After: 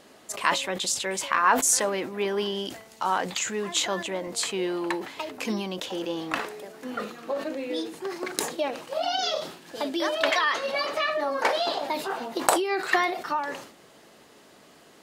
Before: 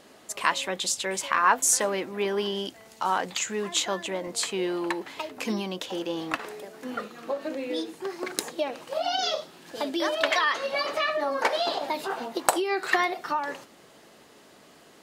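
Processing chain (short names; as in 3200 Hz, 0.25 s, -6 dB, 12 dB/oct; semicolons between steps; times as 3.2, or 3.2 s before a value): sustainer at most 93 dB/s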